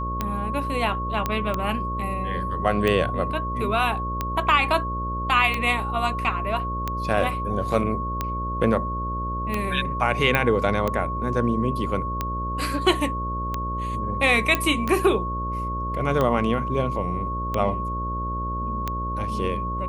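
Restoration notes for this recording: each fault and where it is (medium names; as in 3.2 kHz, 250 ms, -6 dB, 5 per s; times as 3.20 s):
buzz 60 Hz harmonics 10 -30 dBFS
tick 45 rpm -11 dBFS
whine 1.1 kHz -28 dBFS
1.26 s: pop -10 dBFS
10.35 s: pop -7 dBFS
14.55 s: pop -7 dBFS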